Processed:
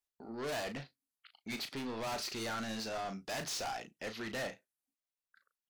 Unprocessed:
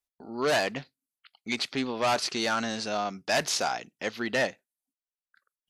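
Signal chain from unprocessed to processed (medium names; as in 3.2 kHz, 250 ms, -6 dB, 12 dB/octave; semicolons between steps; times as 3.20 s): saturation -33 dBFS, distortion -6 dB; doubling 36 ms -9 dB; trim -3.5 dB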